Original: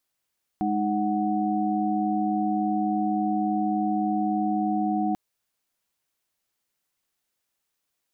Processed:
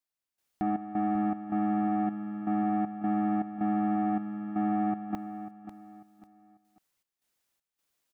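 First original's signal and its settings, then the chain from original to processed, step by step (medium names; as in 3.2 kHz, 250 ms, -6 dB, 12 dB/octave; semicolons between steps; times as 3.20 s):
chord G#3/D#4/F#5 sine, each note -26.5 dBFS 4.54 s
saturation -23 dBFS; trance gate "..xx.xx.xxx" 79 bpm -12 dB; on a send: feedback delay 544 ms, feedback 32%, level -11.5 dB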